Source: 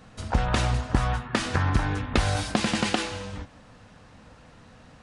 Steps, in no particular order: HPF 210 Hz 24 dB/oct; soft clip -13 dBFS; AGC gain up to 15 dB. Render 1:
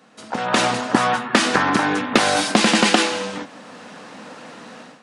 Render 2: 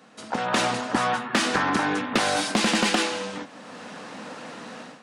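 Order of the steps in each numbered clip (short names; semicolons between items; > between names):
HPF > soft clip > AGC; AGC > HPF > soft clip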